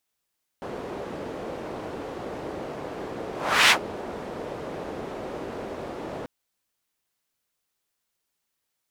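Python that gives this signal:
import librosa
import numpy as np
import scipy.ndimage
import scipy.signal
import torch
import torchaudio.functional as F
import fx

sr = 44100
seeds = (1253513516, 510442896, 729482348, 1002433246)

y = fx.whoosh(sr, seeds[0], length_s=5.64, peak_s=3.08, rise_s=0.39, fall_s=0.1, ends_hz=460.0, peak_hz=2500.0, q=1.2, swell_db=19.0)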